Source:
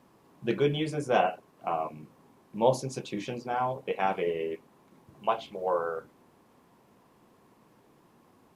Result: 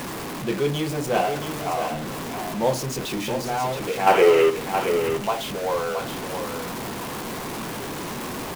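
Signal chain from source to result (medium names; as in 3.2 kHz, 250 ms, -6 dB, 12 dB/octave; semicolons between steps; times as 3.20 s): jump at every zero crossing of -26.5 dBFS; time-frequency box 4.07–4.50 s, 280–3200 Hz +11 dB; in parallel at -6.5 dB: companded quantiser 4-bit; on the sum: delay 673 ms -7.5 dB; trim -3.5 dB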